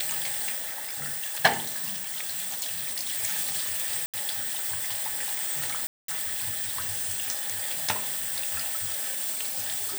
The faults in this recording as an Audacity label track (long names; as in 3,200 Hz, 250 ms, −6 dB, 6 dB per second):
4.060000	4.140000	drop-out 77 ms
5.870000	6.080000	drop-out 213 ms